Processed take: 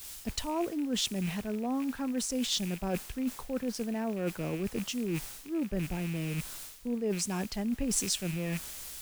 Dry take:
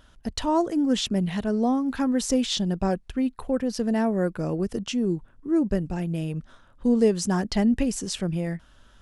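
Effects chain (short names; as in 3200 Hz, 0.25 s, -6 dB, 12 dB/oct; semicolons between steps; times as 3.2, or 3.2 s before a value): rattling part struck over -36 dBFS, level -28 dBFS; added noise white -44 dBFS; reverse; compressor 6:1, threshold -30 dBFS, peak gain reduction 14.5 dB; reverse; dynamic EQ 8800 Hz, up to +4 dB, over -49 dBFS, Q 0.86; three-band expander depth 40%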